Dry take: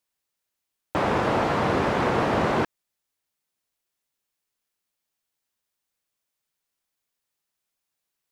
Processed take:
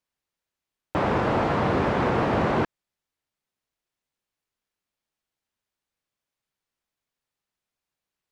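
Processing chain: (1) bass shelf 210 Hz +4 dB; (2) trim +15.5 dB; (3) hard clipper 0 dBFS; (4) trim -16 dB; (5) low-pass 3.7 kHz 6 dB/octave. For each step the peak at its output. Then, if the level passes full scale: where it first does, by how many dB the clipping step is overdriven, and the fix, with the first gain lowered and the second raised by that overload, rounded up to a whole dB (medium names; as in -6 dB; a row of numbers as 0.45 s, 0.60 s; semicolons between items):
-10.0 dBFS, +5.5 dBFS, 0.0 dBFS, -16.0 dBFS, -16.0 dBFS; step 2, 5.5 dB; step 2 +9.5 dB, step 4 -10 dB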